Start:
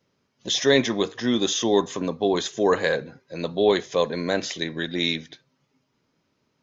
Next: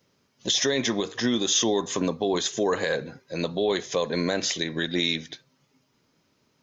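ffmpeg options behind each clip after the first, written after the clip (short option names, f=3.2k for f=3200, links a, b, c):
-af "alimiter=limit=-17.5dB:level=0:latency=1:release=153,highshelf=f=5.2k:g=7.5,volume=2.5dB"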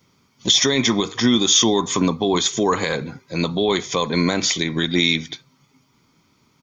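-af "aecho=1:1:0.9:0.52,volume=6.5dB"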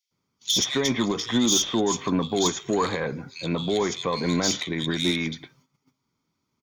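-filter_complex "[0:a]asoftclip=type=tanh:threshold=-10dB,acrossover=split=2600[a][b];[a]adelay=110[c];[c][b]amix=inputs=2:normalize=0,agate=range=-13dB:threshold=-55dB:ratio=16:detection=peak,volume=-3.5dB"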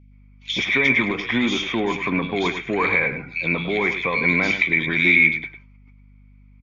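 -af "lowpass=f=2.3k:t=q:w=14,aecho=1:1:102:0.299,aeval=exprs='val(0)+0.00398*(sin(2*PI*50*n/s)+sin(2*PI*2*50*n/s)/2+sin(2*PI*3*50*n/s)/3+sin(2*PI*4*50*n/s)/4+sin(2*PI*5*50*n/s)/5)':c=same"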